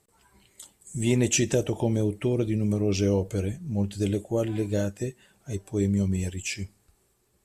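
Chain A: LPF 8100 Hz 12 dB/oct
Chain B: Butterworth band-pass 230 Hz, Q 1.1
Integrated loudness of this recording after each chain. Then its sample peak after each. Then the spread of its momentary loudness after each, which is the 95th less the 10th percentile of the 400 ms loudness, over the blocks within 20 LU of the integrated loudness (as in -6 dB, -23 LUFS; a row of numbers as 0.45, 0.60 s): -27.0, -30.5 LUFS; -11.0, -16.0 dBFS; 12, 15 LU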